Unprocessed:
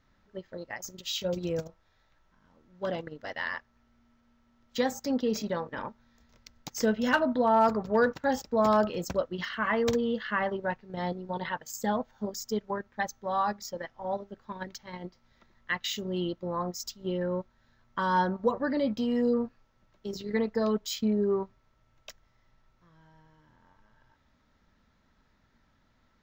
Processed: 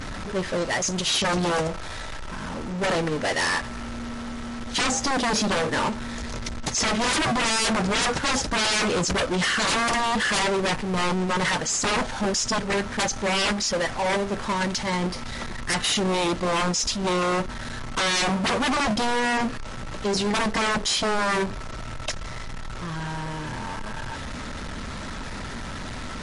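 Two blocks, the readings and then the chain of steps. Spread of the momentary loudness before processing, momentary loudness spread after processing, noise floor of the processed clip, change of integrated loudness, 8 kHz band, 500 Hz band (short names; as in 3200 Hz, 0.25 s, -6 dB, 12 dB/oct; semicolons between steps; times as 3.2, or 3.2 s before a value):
15 LU, 13 LU, -34 dBFS, +5.5 dB, +16.5 dB, +2.5 dB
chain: sine folder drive 17 dB, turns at -14.5 dBFS; power-law curve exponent 0.35; gain -7.5 dB; MP3 48 kbps 32000 Hz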